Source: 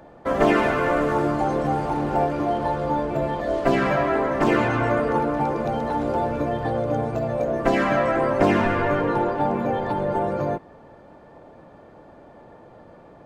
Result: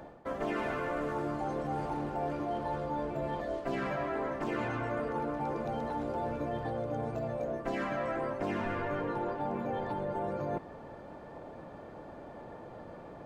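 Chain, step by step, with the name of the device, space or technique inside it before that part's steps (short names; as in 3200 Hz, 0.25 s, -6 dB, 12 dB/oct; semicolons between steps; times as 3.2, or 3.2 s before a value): compression on the reversed sound (reverse; compressor 4:1, threshold -34 dBFS, peak gain reduction 17.5 dB; reverse)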